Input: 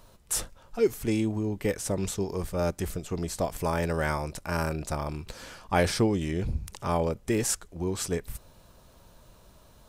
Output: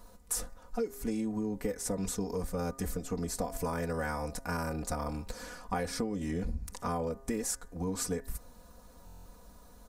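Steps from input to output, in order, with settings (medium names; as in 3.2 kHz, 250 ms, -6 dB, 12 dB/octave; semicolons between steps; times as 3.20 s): peaking EQ 3 kHz -9 dB 0.88 oct; comb 4.1 ms, depth 85%; de-hum 134.5 Hz, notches 15; compression 12:1, threshold -28 dBFS, peak gain reduction 14 dB; buffer glitch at 9.05 s, samples 1024; trim -1.5 dB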